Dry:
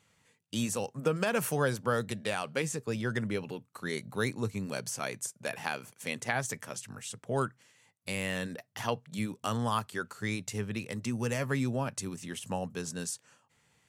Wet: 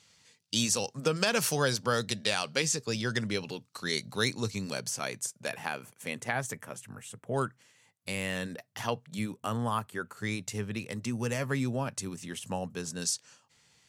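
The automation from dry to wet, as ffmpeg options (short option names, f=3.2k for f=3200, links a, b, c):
-af "asetnsamples=n=441:p=0,asendcmd='4.73 equalizer g 4.5;5.56 equalizer g -3.5;6.53 equalizer g -9.5;7.34 equalizer g 1.5;9.35 equalizer g -8;10.17 equalizer g 1.5;13.02 equalizer g 11.5',equalizer=f=4.9k:t=o:w=1.3:g=15"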